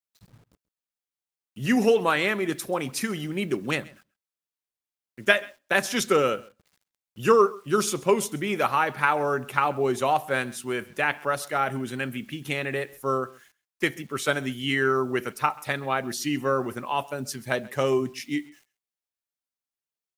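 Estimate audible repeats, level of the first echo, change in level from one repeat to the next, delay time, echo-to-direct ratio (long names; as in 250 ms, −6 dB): 1, −22.5 dB, repeats not evenly spaced, 133 ms, −22.5 dB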